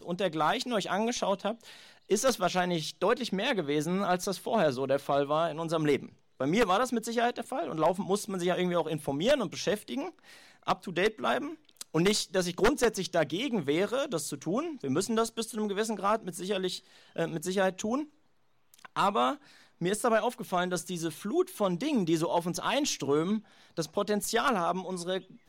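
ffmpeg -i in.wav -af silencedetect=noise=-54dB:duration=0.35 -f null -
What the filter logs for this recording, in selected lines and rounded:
silence_start: 18.10
silence_end: 18.74 | silence_duration: 0.64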